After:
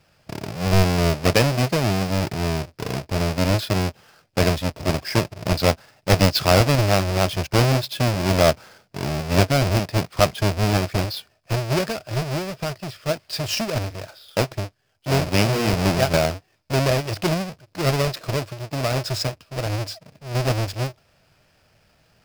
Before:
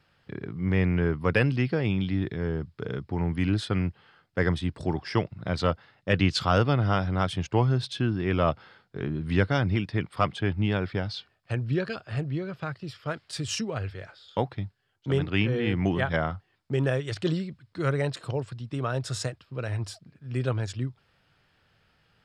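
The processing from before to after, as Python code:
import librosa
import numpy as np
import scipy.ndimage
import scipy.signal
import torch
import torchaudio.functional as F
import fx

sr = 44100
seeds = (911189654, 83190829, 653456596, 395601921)

y = fx.halfwave_hold(x, sr)
y = fx.graphic_eq_31(y, sr, hz=(630, 2500, 5000), db=(9, 5, 9))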